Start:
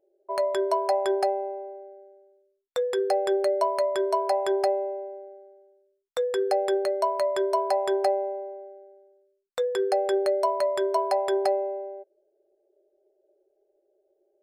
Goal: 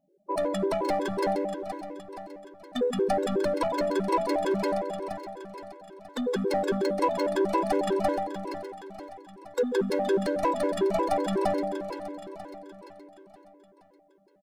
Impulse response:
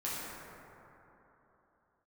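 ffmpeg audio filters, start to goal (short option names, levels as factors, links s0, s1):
-filter_complex "[0:a]aeval=exprs='clip(val(0),-1,0.0891)':c=same,asplit=3[s0][s1][s2];[s1]asetrate=22050,aresample=44100,atempo=2,volume=0.501[s3];[s2]asetrate=37084,aresample=44100,atempo=1.18921,volume=0.282[s4];[s0][s3][s4]amix=inputs=3:normalize=0,aeval=exprs='0.316*(cos(1*acos(clip(val(0)/0.316,-1,1)))-cos(1*PI/2))+0.0282*(cos(5*acos(clip(val(0)/0.316,-1,1)))-cos(5*PI/2))+0.002*(cos(8*acos(clip(val(0)/0.316,-1,1)))-cos(8*PI/2))':c=same,aecho=1:1:471|942|1413|1884|2355|2826:0.355|0.185|0.0959|0.0499|0.0259|0.0135,asplit=2[s5][s6];[1:a]atrim=start_sample=2205,asetrate=66150,aresample=44100[s7];[s6][s7]afir=irnorm=-1:irlink=0,volume=0.126[s8];[s5][s8]amix=inputs=2:normalize=0,afftfilt=real='re*gt(sin(2*PI*5.5*pts/sr)*(1-2*mod(floor(b*sr/1024/280),2)),0)':imag='im*gt(sin(2*PI*5.5*pts/sr)*(1-2*mod(floor(b*sr/1024/280),2)),0)':win_size=1024:overlap=0.75,volume=0.891"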